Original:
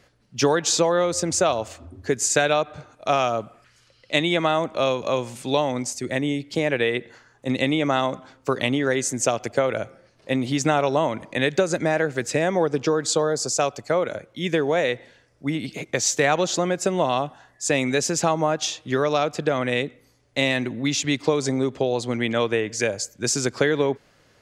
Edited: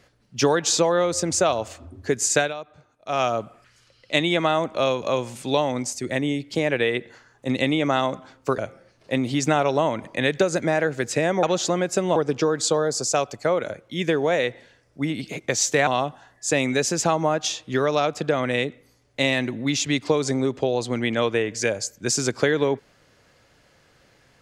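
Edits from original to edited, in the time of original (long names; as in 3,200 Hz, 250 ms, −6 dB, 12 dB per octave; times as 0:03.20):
0:02.39–0:03.21: duck −13 dB, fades 0.14 s
0:08.58–0:09.76: remove
0:16.32–0:17.05: move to 0:12.61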